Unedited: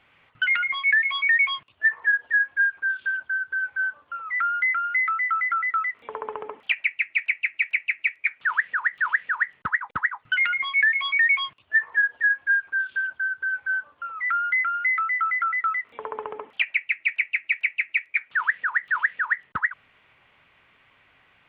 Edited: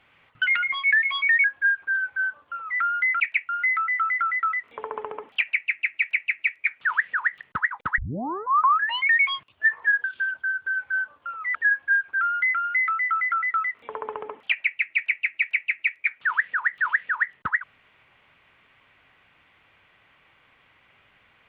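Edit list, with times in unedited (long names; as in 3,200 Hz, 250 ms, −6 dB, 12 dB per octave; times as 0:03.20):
0:01.44–0:02.39: remove
0:02.92–0:03.57: remove
0:07.14–0:07.43: move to 0:04.80
0:09.01–0:09.51: remove
0:10.08: tape start 1.10 s
0:12.14–0:12.80: move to 0:14.31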